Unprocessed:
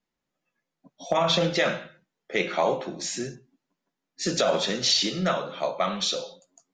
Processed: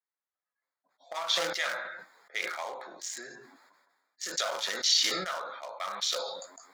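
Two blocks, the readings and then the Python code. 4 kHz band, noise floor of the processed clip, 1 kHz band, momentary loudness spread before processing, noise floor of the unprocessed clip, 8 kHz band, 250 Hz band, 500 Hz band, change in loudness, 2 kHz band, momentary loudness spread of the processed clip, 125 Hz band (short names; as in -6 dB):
-2.5 dB, under -85 dBFS, -7.5 dB, 11 LU, -85 dBFS, -1.5 dB, -18.0 dB, -12.5 dB, -5.0 dB, -3.0 dB, 17 LU, under -20 dB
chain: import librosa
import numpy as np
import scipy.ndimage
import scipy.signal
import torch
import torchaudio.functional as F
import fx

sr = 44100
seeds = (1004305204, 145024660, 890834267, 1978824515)

y = fx.wiener(x, sr, points=15)
y = scipy.signal.sosfilt(scipy.signal.butter(2, 1300.0, 'highpass', fs=sr, output='sos'), y)
y = fx.high_shelf(y, sr, hz=7200.0, db=8.0)
y = fx.notch(y, sr, hz=2600.0, q=10.0)
y = fx.sustainer(y, sr, db_per_s=42.0)
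y = y * librosa.db_to_amplitude(-4.0)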